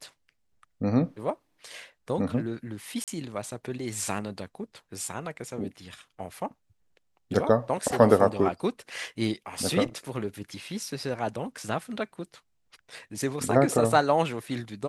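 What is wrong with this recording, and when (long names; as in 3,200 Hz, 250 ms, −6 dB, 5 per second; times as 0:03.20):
0:03.04–0:03.08: drop-out 37 ms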